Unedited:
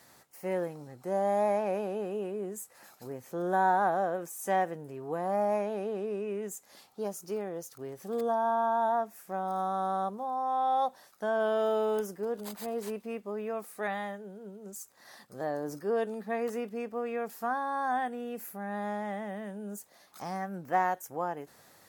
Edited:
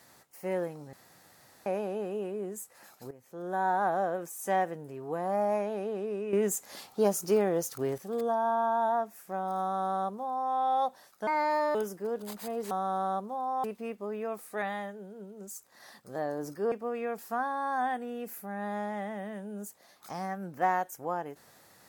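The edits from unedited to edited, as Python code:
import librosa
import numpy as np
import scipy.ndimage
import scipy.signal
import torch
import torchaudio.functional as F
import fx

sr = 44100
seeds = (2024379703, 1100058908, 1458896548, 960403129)

y = fx.edit(x, sr, fx.room_tone_fill(start_s=0.93, length_s=0.73),
    fx.fade_in_from(start_s=3.11, length_s=0.88, floor_db=-14.5),
    fx.clip_gain(start_s=6.33, length_s=1.65, db=9.5),
    fx.duplicate(start_s=9.6, length_s=0.93, to_s=12.89),
    fx.speed_span(start_s=11.27, length_s=0.66, speed=1.38),
    fx.cut(start_s=15.97, length_s=0.86), tone=tone)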